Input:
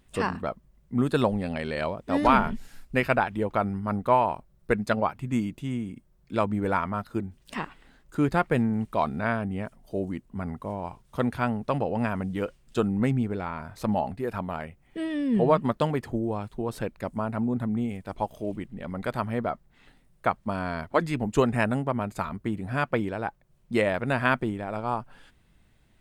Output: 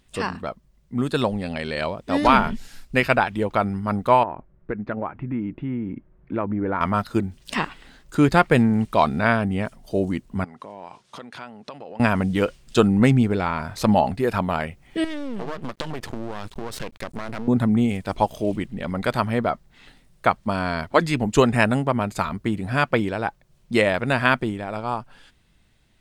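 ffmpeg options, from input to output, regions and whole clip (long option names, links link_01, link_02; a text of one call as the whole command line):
ffmpeg -i in.wav -filter_complex "[0:a]asettb=1/sr,asplit=3[link_01][link_02][link_03];[link_01]atrim=end=4.234[link_04];[link_02]atrim=start=4.23:end=6.81,asetpts=PTS-STARTPTS,afade=type=in:duration=0.004:curve=qsin,afade=type=out:start_time=2.576:duration=0.004:curve=qsin,lowpass=frequency=2000:width=0.5412,lowpass=frequency=2000:width=1.3066,equalizer=frequency=320:width=2.2:gain=6,acompressor=threshold=-33dB:ratio=2.5:attack=3.2:release=140:knee=1:detection=peak[link_05];[link_03]atrim=start=6.806[link_06];[link_04][link_05]acrossfade=duration=0.004:curve1=hsin:curve2=qsin[link_07];[link_07][link_06]acrossfade=duration=0.004:curve1=qsin:curve2=hsin,asettb=1/sr,asplit=3[link_08][link_09][link_10];[link_08]atrim=end=10.444[link_11];[link_09]atrim=start=10.44:end=12,asetpts=PTS-STARTPTS,afade=type=in:duration=0.004:curve=qsin,afade=type=out:start_time=1.556:duration=0.004:curve=qsin,acompressor=threshold=-39dB:ratio=12:attack=3.2:release=140:knee=1:detection=peak,highpass=140,lowpass=7200,lowshelf=frequency=230:gain=-11.5[link_12];[link_10]atrim=start=11.996[link_13];[link_11][link_12]acrossfade=duration=0.004:curve1=hsin:curve2=qsin[link_14];[link_14][link_13]acrossfade=duration=0.004:curve1=qsin:curve2=hsin,asettb=1/sr,asplit=3[link_15][link_16][link_17];[link_15]atrim=end=15.044[link_18];[link_16]atrim=start=15.04:end=17.48,asetpts=PTS-STARTPTS,afade=type=in:duration=0.004:curve=qsin,afade=type=out:start_time=2.436:duration=0.004:curve=qsin,aeval=exprs='max(val(0),0)':channel_layout=same,acompressor=threshold=-34dB:ratio=8:attack=3.2:release=140:knee=1:detection=peak[link_19];[link_17]atrim=start=17.476[link_20];[link_18][link_19]acrossfade=duration=0.004:curve1=hsin:curve2=qsin[link_21];[link_21][link_20]acrossfade=duration=0.004:curve1=qsin:curve2=hsin,equalizer=frequency=4700:width_type=o:width=1.9:gain=6.5,dynaudnorm=framelen=310:gausssize=11:maxgain=9.5dB" out.wav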